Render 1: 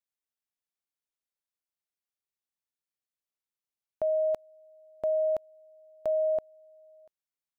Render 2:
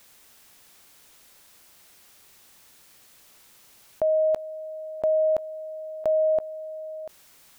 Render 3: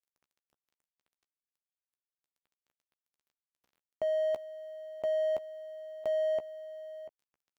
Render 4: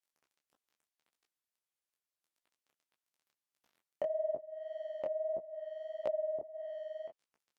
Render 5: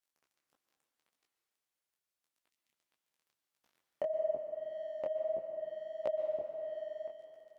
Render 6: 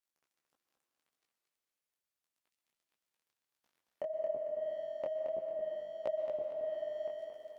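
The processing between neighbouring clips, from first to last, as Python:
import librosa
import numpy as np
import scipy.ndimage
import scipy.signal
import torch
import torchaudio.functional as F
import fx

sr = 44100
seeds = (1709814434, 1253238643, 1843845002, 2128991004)

y1 = fx.env_flatten(x, sr, amount_pct=50)
y1 = y1 * 10.0 ** (5.0 / 20.0)
y2 = scipy.ndimage.median_filter(y1, 25, mode='constant')
y2 = fx.low_shelf(y2, sr, hz=77.0, db=-7.0)
y2 = fx.doubler(y2, sr, ms=14.0, db=-10.0)
y2 = y2 * 10.0 ** (-8.0 / 20.0)
y3 = fx.env_lowpass_down(y2, sr, base_hz=430.0, full_db=-32.5)
y3 = fx.low_shelf(y3, sr, hz=120.0, db=-11.0)
y3 = fx.detune_double(y3, sr, cents=57)
y3 = y3 * 10.0 ** (6.0 / 20.0)
y4 = fx.spec_erase(y3, sr, start_s=2.51, length_s=0.21, low_hz=290.0, high_hz=1800.0)
y4 = fx.rev_plate(y4, sr, seeds[0], rt60_s=2.7, hf_ratio=0.85, predelay_ms=110, drr_db=5.5)
y5 = fx.rider(y4, sr, range_db=5, speed_s=0.5)
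y5 = fx.echo_feedback(y5, sr, ms=224, feedback_pct=37, wet_db=-6)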